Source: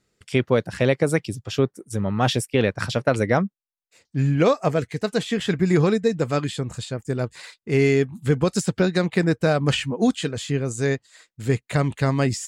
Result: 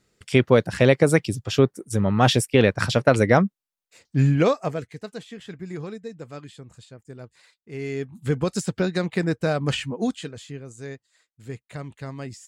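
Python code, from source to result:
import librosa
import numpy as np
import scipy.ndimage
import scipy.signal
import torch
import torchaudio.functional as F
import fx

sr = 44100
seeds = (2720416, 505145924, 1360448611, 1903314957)

y = fx.gain(x, sr, db=fx.line((4.23, 3.0), (4.78, -7.5), (5.34, -15.5), (7.73, -15.5), (8.27, -3.5), (9.93, -3.5), (10.63, -14.0)))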